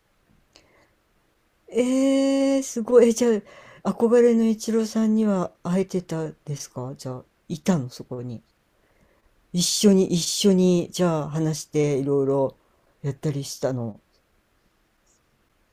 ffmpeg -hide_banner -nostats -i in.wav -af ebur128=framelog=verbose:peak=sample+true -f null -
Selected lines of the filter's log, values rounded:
Integrated loudness:
  I:         -22.4 LUFS
  Threshold: -34.1 LUFS
Loudness range:
  LRA:         9.8 LU
  Threshold: -43.5 LUFS
  LRA low:   -30.4 LUFS
  LRA high:  -20.6 LUFS
Sample peak:
  Peak:       -4.9 dBFS
True peak:
  Peak:       -4.9 dBFS